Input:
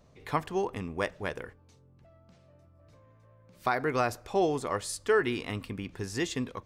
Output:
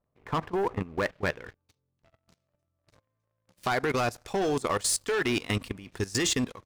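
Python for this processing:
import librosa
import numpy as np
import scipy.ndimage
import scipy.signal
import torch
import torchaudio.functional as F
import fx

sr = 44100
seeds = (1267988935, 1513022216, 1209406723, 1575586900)

p1 = fx.high_shelf(x, sr, hz=2500.0, db=6.5)
p2 = fx.rider(p1, sr, range_db=4, speed_s=2.0)
p3 = p1 + (p2 * librosa.db_to_amplitude(-2.0))
p4 = fx.filter_sweep_lowpass(p3, sr, from_hz=1300.0, to_hz=11000.0, start_s=0.72, end_s=2.48, q=1.0)
p5 = fx.leveller(p4, sr, passes=3)
p6 = fx.level_steps(p5, sr, step_db=18)
y = p6 * librosa.db_to_amplitude(-8.0)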